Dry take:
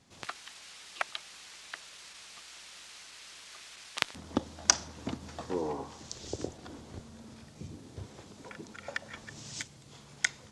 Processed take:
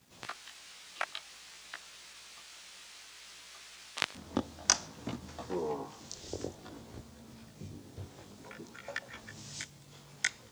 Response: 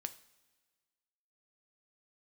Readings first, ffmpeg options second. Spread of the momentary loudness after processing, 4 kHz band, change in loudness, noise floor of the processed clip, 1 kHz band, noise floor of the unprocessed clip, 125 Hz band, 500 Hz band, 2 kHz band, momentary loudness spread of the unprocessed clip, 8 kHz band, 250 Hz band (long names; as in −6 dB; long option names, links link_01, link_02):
15 LU, −2.0 dB, −2.0 dB, −56 dBFS, −2.0 dB, −54 dBFS, −2.0 dB, −1.5 dB, −2.0 dB, 15 LU, −2.0 dB, −2.0 dB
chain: -af "flanger=delay=16:depth=5.6:speed=0.56,acrusher=bits=10:mix=0:aa=0.000001,volume=1dB"